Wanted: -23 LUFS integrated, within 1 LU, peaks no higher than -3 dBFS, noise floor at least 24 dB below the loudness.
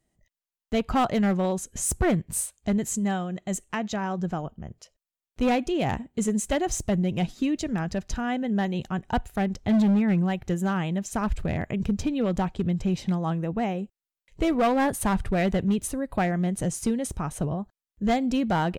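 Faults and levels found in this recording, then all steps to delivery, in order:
clipped samples 1.5%; clipping level -17.5 dBFS; loudness -26.5 LUFS; peak level -17.5 dBFS; loudness target -23.0 LUFS
-> clip repair -17.5 dBFS; trim +3.5 dB

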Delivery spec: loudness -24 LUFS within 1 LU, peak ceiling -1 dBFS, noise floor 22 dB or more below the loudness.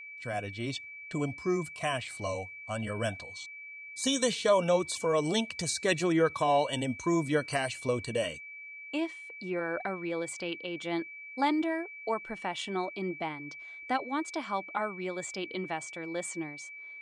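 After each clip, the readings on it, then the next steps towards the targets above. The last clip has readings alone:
steady tone 2.3 kHz; tone level -43 dBFS; loudness -32.0 LUFS; peak level -13.5 dBFS; loudness target -24.0 LUFS
-> band-stop 2.3 kHz, Q 30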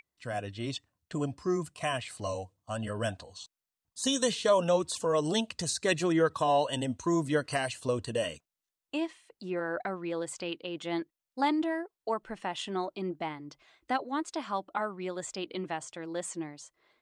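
steady tone not found; loudness -32.5 LUFS; peak level -14.0 dBFS; loudness target -24.0 LUFS
-> trim +8.5 dB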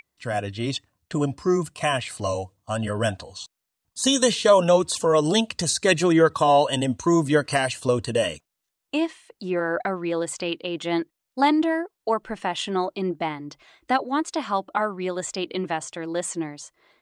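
loudness -24.0 LUFS; peak level -5.5 dBFS; noise floor -82 dBFS

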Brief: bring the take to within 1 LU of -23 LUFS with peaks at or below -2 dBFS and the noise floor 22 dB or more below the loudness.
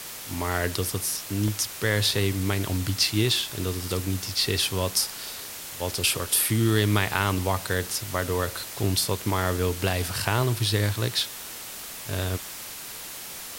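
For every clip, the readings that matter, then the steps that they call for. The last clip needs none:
dropouts 1; longest dropout 2.6 ms; noise floor -39 dBFS; noise floor target -48 dBFS; loudness -26.0 LUFS; peak level -5.5 dBFS; loudness target -23.0 LUFS
-> interpolate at 1.48 s, 2.6 ms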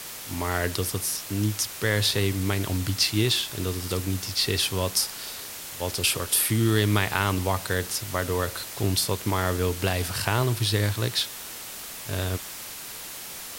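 dropouts 0; noise floor -39 dBFS; noise floor target -48 dBFS
-> noise print and reduce 9 dB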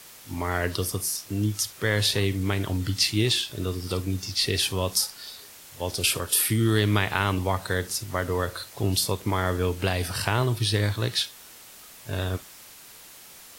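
noise floor -47 dBFS; noise floor target -48 dBFS
-> noise print and reduce 6 dB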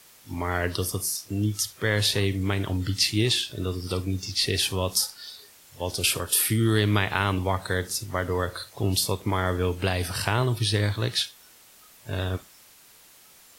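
noise floor -53 dBFS; loudness -25.5 LUFS; peak level -5.5 dBFS; loudness target -23.0 LUFS
-> trim +2.5 dB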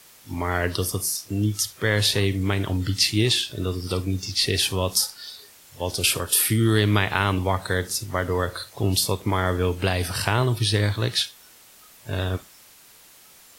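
loudness -23.0 LUFS; peak level -3.0 dBFS; noise floor -51 dBFS

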